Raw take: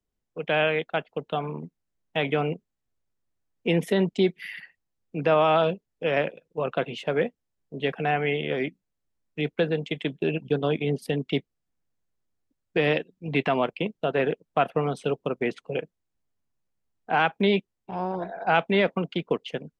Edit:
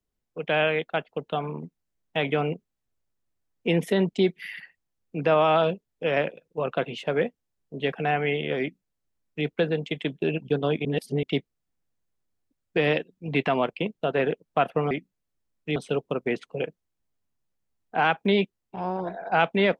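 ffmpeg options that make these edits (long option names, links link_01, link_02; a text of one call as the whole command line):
ffmpeg -i in.wav -filter_complex "[0:a]asplit=5[link_01][link_02][link_03][link_04][link_05];[link_01]atrim=end=10.852[link_06];[link_02]atrim=start=10.848:end=11.232,asetpts=PTS-STARTPTS,areverse[link_07];[link_03]atrim=start=11.228:end=14.912[link_08];[link_04]atrim=start=8.608:end=9.462[link_09];[link_05]atrim=start=14.908[link_10];[link_06][link_07]acrossfade=duration=0.004:curve1=hsin:curve2=hsin[link_11];[link_11][link_08]acrossfade=duration=0.004:curve1=hsin:curve2=hsin[link_12];[link_12][link_09]acrossfade=duration=0.004:curve1=hsin:curve2=hsin[link_13];[link_13][link_10]acrossfade=duration=0.004:curve1=hsin:curve2=hsin" out.wav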